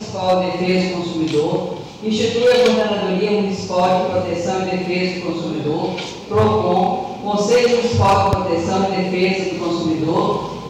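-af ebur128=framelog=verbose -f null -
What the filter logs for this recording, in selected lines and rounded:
Integrated loudness:
  I:         -17.9 LUFS
  Threshold: -27.9 LUFS
Loudness range:
  LRA:         2.7 LU
  Threshold: -37.8 LUFS
  LRA low:   -19.5 LUFS
  LRA high:  -16.8 LUFS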